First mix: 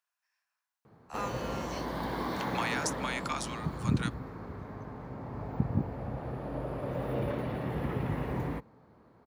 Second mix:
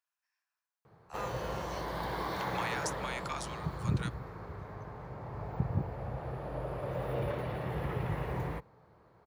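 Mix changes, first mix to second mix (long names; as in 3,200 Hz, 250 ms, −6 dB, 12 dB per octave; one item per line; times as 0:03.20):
speech −4.5 dB
background: add parametric band 250 Hz −14 dB 0.51 octaves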